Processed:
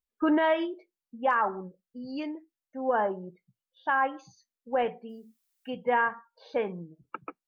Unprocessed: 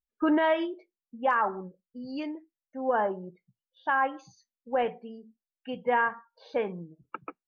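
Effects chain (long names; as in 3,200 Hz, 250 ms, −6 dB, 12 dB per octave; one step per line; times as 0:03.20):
0:05.08–0:05.70: background noise blue −78 dBFS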